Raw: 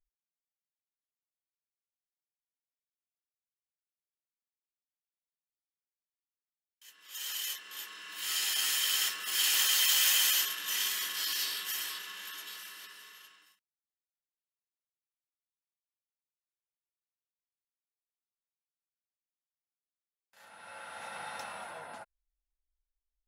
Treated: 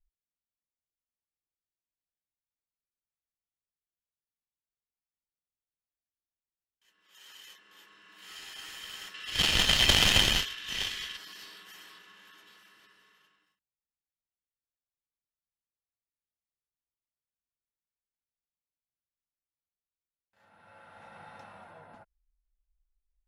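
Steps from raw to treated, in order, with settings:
0:09.14–0:11.17: meter weighting curve D
harmonic generator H 3 −11 dB, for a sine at −5 dBFS
RIAA equalisation playback
level +8.5 dB

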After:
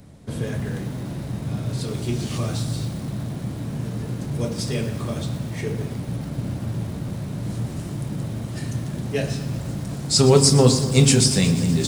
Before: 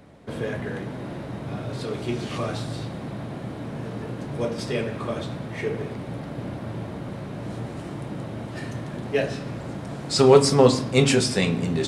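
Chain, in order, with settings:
bass and treble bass +12 dB, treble +14 dB
feedback echo at a low word length 120 ms, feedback 80%, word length 5 bits, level −14.5 dB
level −4 dB

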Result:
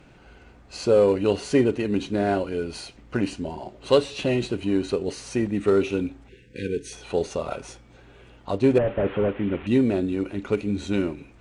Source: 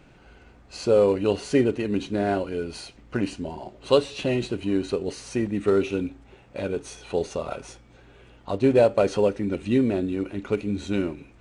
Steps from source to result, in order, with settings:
0:08.78–0:09.67: linear delta modulator 16 kbit/s, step −35.5 dBFS
harmonic generator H 5 −29 dB, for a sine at −4.5 dBFS
0:06.29–0:06.92: time-frequency box erased 520–1,500 Hz

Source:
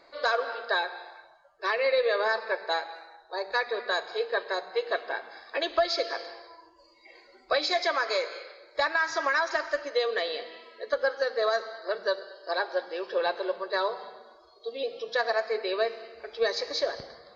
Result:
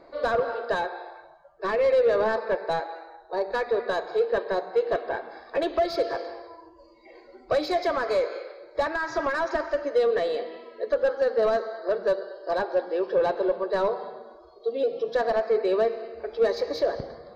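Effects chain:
soft clipping −23.5 dBFS, distortion −13 dB
tilt shelving filter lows +9.5 dB, about 1,100 Hz
level +2.5 dB

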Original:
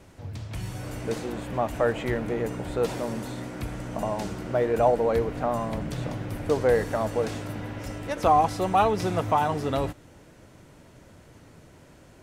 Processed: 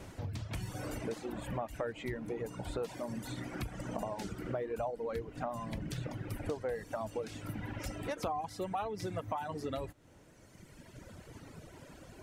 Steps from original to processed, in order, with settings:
reverb reduction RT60 2 s
downward compressor 5 to 1, threshold −40 dBFS, peak gain reduction 21 dB
level +3.5 dB

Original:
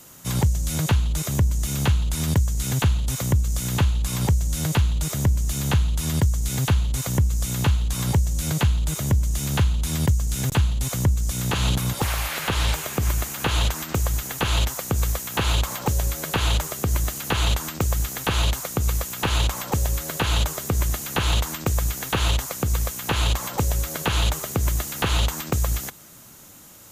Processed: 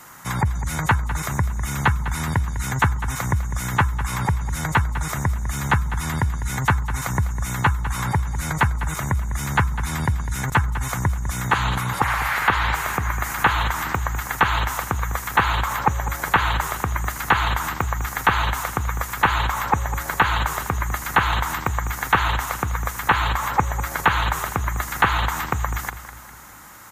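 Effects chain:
flat-topped bell 1,300 Hz +12.5 dB
in parallel at −3 dB: output level in coarse steps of 15 dB
on the sum: gate on every frequency bin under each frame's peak −30 dB strong
on a send: repeating echo 202 ms, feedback 48%, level −12.5 dB
on the sum: level −4.5 dB

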